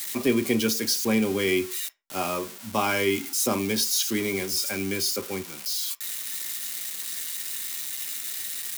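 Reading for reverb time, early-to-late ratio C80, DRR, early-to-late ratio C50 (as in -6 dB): no single decay rate, 26.5 dB, 5.5 dB, 20.0 dB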